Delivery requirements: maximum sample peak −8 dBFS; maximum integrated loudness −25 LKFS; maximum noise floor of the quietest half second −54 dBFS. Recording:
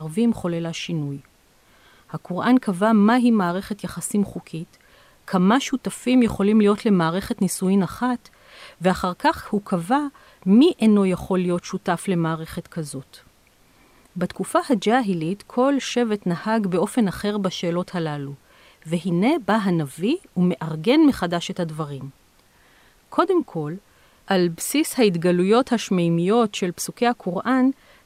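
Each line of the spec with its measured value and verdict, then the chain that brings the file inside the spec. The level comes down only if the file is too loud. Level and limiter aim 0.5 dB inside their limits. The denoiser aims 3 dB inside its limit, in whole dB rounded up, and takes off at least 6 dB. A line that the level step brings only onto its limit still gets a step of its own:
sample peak −4.5 dBFS: out of spec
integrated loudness −21.5 LKFS: out of spec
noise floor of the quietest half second −56 dBFS: in spec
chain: level −4 dB

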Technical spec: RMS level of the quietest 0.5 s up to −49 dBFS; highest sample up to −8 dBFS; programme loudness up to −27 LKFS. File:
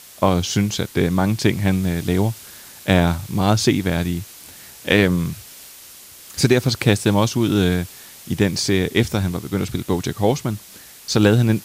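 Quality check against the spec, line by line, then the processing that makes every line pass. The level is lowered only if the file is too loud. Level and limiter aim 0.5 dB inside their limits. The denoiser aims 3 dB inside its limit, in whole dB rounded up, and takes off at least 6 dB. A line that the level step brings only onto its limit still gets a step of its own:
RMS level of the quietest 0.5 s −42 dBFS: out of spec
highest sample −2.0 dBFS: out of spec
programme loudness −19.5 LKFS: out of spec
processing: level −8 dB

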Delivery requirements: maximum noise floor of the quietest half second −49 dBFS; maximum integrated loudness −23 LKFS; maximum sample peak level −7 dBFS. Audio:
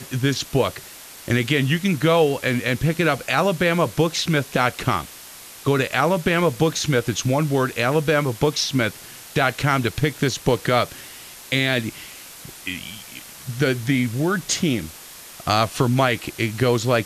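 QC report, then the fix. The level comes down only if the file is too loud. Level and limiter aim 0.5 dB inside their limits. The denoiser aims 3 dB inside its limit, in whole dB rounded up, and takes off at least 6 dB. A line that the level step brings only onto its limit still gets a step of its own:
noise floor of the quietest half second −41 dBFS: out of spec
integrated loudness −21.0 LKFS: out of spec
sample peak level −5.0 dBFS: out of spec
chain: broadband denoise 9 dB, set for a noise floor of −41 dBFS
level −2.5 dB

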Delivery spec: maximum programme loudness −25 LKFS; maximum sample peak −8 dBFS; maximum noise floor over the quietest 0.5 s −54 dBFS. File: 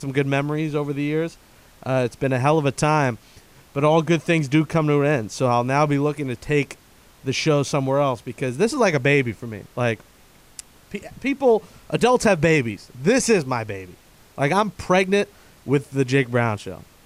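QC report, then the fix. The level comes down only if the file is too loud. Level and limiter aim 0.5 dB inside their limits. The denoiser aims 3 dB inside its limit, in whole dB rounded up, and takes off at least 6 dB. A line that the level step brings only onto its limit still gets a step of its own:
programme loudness −21.0 LKFS: out of spec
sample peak −5.0 dBFS: out of spec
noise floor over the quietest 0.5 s −51 dBFS: out of spec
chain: level −4.5 dB

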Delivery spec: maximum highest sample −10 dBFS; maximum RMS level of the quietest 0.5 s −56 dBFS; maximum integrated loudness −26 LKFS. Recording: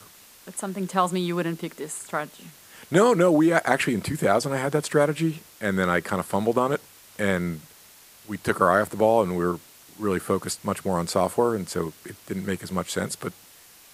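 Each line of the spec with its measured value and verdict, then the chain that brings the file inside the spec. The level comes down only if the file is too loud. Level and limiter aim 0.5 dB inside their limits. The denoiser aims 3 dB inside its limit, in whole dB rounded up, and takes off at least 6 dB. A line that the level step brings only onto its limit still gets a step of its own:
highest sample −4.5 dBFS: out of spec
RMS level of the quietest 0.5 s −51 dBFS: out of spec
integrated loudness −24.5 LKFS: out of spec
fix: broadband denoise 6 dB, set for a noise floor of −51 dBFS
level −2 dB
brickwall limiter −10.5 dBFS

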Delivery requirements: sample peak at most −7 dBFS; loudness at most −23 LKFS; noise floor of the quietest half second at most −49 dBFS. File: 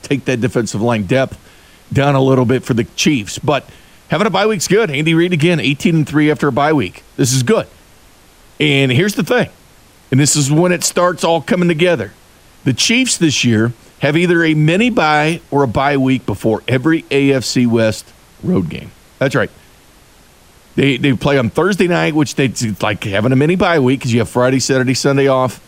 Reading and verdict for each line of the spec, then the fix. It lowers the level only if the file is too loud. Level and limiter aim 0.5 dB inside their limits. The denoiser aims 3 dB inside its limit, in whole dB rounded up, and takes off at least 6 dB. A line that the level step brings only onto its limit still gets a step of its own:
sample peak −2.0 dBFS: out of spec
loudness −14.0 LKFS: out of spec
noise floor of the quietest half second −45 dBFS: out of spec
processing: level −9.5 dB

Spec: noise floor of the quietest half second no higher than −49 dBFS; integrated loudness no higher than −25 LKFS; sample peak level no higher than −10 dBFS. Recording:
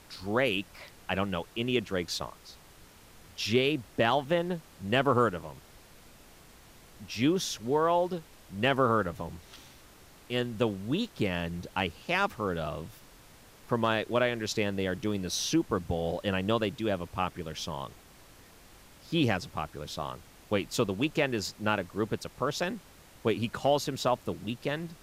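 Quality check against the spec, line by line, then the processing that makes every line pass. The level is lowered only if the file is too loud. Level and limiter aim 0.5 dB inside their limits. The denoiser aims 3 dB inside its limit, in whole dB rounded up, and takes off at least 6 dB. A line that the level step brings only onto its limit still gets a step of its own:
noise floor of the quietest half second −54 dBFS: in spec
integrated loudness −30.5 LKFS: in spec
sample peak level −14.5 dBFS: in spec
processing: no processing needed

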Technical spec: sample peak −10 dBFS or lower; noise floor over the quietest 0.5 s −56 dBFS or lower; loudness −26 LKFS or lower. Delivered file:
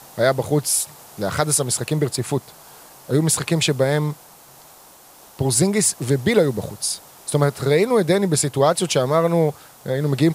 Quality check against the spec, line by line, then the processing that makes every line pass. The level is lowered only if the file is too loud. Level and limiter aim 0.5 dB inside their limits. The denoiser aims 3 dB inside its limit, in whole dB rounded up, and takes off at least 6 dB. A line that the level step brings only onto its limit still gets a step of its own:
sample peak −2.0 dBFS: out of spec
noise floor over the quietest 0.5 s −47 dBFS: out of spec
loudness −20.0 LKFS: out of spec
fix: broadband denoise 6 dB, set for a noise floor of −47 dBFS
level −6.5 dB
brickwall limiter −10.5 dBFS

